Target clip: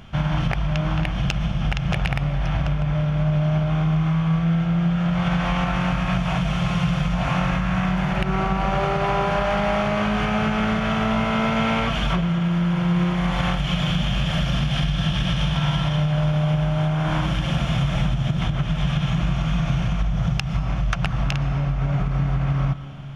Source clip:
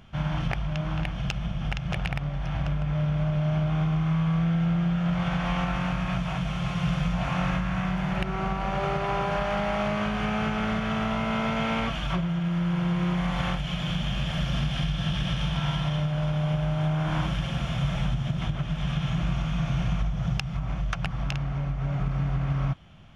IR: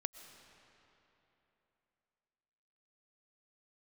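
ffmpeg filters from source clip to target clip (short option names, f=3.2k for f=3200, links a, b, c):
-filter_complex "[0:a]acompressor=threshold=-26dB:ratio=6,asplit=2[a][b];[1:a]atrim=start_sample=2205[c];[b][c]afir=irnorm=-1:irlink=0,volume=6dB[d];[a][d]amix=inputs=2:normalize=0"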